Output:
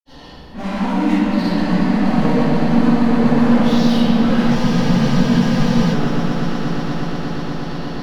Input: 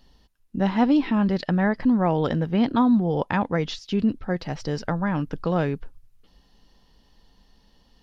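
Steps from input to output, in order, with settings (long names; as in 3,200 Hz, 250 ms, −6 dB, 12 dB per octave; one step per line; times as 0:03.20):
low-shelf EQ 410 Hz +11 dB
downward compressor 1.5 to 1, threshold −25 dBFS, peak gain reduction 6.5 dB
mid-hump overdrive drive 33 dB, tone 3,400 Hz, clips at −19.5 dBFS
granular cloud 100 ms, grains 20 per second, pitch spread up and down by 0 semitones
on a send: echo that builds up and dies away 120 ms, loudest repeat 8, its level −13 dB
on the sum: rectangular room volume 150 cubic metres, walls hard, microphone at 2.3 metres
frozen spectrum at 0:04.57, 1.36 s
level −10.5 dB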